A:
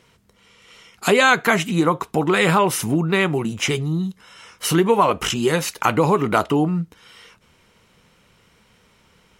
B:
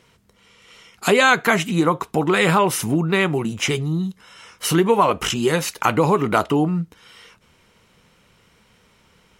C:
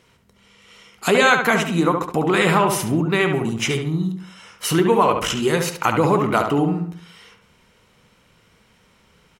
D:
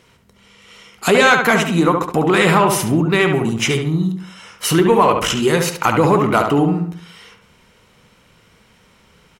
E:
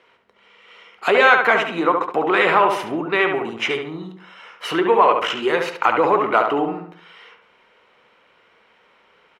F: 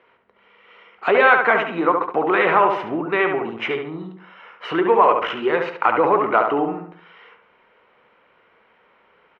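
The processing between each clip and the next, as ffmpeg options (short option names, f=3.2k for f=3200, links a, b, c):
-af anull
-filter_complex "[0:a]asplit=2[a][b];[b]adelay=70,lowpass=f=2.7k:p=1,volume=-5dB,asplit=2[c][d];[d]adelay=70,lowpass=f=2.7k:p=1,volume=0.43,asplit=2[e][f];[f]adelay=70,lowpass=f=2.7k:p=1,volume=0.43,asplit=2[g][h];[h]adelay=70,lowpass=f=2.7k:p=1,volume=0.43,asplit=2[i][j];[j]adelay=70,lowpass=f=2.7k:p=1,volume=0.43[k];[a][c][e][g][i][k]amix=inputs=6:normalize=0,volume=-1dB"
-af "acontrast=33,volume=-1dB"
-filter_complex "[0:a]acrossover=split=350 3400:gain=0.0708 1 0.0708[a][b][c];[a][b][c]amix=inputs=3:normalize=0"
-af "lowpass=2.3k"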